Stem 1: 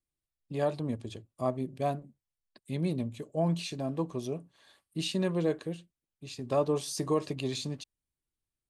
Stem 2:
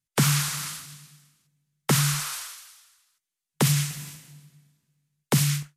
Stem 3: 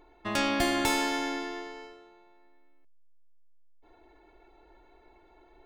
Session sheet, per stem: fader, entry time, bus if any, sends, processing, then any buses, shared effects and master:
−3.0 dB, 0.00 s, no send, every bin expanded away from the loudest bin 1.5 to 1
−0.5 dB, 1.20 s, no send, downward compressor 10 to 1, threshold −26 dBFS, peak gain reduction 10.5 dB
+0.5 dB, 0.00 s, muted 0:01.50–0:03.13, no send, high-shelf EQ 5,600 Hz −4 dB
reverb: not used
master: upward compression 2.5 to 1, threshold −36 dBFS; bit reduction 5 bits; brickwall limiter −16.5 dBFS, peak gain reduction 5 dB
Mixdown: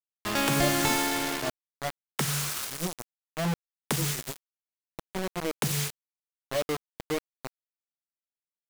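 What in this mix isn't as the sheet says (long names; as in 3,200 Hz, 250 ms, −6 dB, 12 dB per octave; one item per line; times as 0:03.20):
stem 2: entry 1.20 s → 0.30 s
master: missing brickwall limiter −16.5 dBFS, peak gain reduction 5 dB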